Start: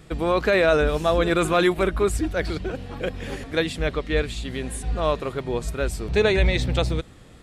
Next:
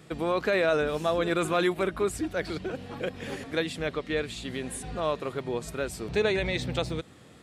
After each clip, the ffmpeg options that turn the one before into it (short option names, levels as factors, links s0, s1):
-filter_complex "[0:a]highpass=120,asplit=2[s0][s1];[s1]acompressor=threshold=0.0355:ratio=6,volume=0.841[s2];[s0][s2]amix=inputs=2:normalize=0,volume=0.422"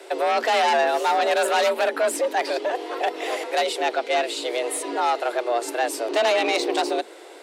-af "aeval=exprs='0.2*(cos(1*acos(clip(val(0)/0.2,-1,1)))-cos(1*PI/2))+0.0891*(cos(2*acos(clip(val(0)/0.2,-1,1)))-cos(2*PI/2))+0.0794*(cos(5*acos(clip(val(0)/0.2,-1,1)))-cos(5*PI/2))':c=same,afreqshift=230,highpass=f=300:w=0.5412,highpass=f=300:w=1.3066"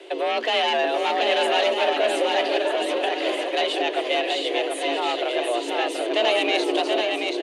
-filter_complex "[0:a]highpass=210,equalizer=f=320:t=q:w=4:g=7,equalizer=f=840:t=q:w=4:g=-4,equalizer=f=1400:t=q:w=4:g=-7,equalizer=f=3000:t=q:w=4:g=9,equalizer=f=5300:t=q:w=4:g=-8,equalizer=f=7800:t=q:w=4:g=-10,lowpass=f=9100:w=0.5412,lowpass=f=9100:w=1.3066,asplit=2[s0][s1];[s1]aecho=0:1:730|1241|1599|1849|2024:0.631|0.398|0.251|0.158|0.1[s2];[s0][s2]amix=inputs=2:normalize=0,volume=0.841"